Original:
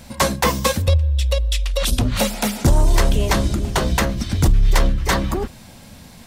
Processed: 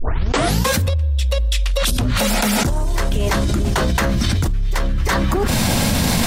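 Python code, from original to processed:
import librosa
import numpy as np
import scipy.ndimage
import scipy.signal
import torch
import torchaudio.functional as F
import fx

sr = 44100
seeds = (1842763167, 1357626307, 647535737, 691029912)

y = fx.tape_start_head(x, sr, length_s=0.68)
y = fx.dynamic_eq(y, sr, hz=1500.0, q=1.5, threshold_db=-38.0, ratio=4.0, max_db=4)
y = fx.env_flatten(y, sr, amount_pct=100)
y = F.gain(torch.from_numpy(y), -7.0).numpy()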